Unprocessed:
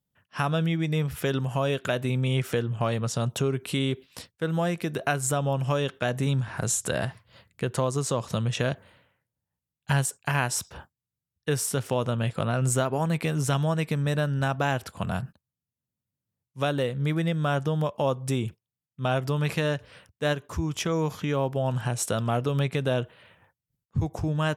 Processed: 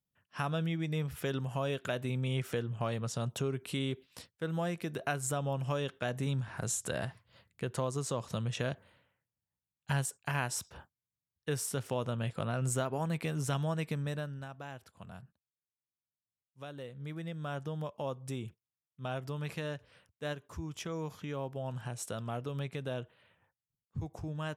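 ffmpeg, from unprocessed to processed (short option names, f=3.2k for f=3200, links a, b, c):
-af "volume=-0.5dB,afade=t=out:st=13.92:d=0.55:silence=0.266073,afade=t=in:st=16.67:d=1.02:silence=0.421697"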